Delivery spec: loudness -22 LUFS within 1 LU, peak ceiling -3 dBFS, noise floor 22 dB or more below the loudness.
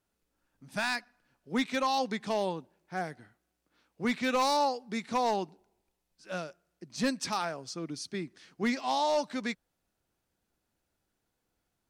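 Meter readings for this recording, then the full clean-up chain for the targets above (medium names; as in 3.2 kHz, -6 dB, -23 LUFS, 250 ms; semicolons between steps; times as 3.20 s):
clipped samples 0.5%; clipping level -21.5 dBFS; loudness -32.0 LUFS; peak level -21.5 dBFS; loudness target -22.0 LUFS
-> clip repair -21.5 dBFS; trim +10 dB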